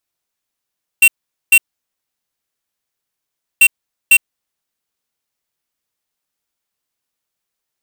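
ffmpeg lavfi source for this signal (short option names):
-f lavfi -i "aevalsrc='0.447*(2*lt(mod(2730*t,1),0.5)-1)*clip(min(mod(mod(t,2.59),0.5),0.06-mod(mod(t,2.59),0.5))/0.005,0,1)*lt(mod(t,2.59),1)':d=5.18:s=44100"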